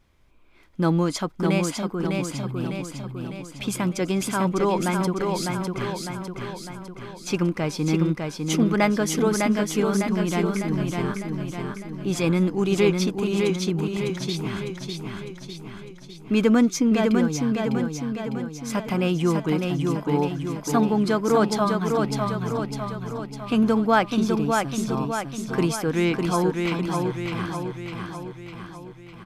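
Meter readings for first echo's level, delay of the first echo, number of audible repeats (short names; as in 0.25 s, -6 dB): -4.0 dB, 0.603 s, 6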